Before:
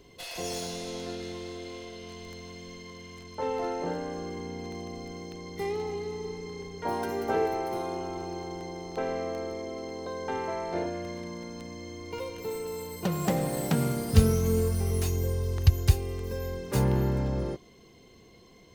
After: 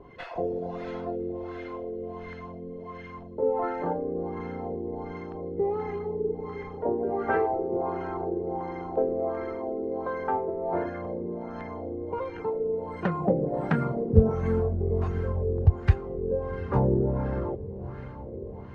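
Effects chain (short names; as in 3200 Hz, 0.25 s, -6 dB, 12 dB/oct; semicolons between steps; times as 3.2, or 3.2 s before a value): reverb removal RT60 0.63 s; in parallel at -2 dB: compressor, threshold -39 dBFS, peak gain reduction 24.5 dB; on the sum: diffused feedback echo 1.025 s, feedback 64%, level -14.5 dB; LFO low-pass sine 1.4 Hz 420–1700 Hz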